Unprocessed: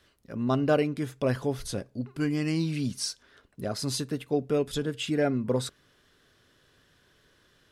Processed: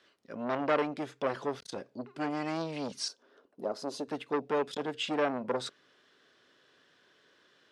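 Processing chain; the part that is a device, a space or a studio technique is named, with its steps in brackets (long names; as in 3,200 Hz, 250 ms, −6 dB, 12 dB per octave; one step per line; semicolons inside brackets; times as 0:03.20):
public-address speaker with an overloaded transformer (saturating transformer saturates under 1,500 Hz; band-pass filter 280–5,500 Hz)
0:03.08–0:04.08: graphic EQ with 10 bands 125 Hz −11 dB, 250 Hz +3 dB, 500 Hz +4 dB, 2,000 Hz −11 dB, 4,000 Hz −7 dB, 8,000 Hz −6 dB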